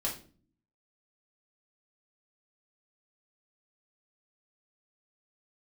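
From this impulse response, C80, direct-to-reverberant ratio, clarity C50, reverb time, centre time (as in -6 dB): 14.0 dB, -3.5 dB, 8.5 dB, 0.40 s, 24 ms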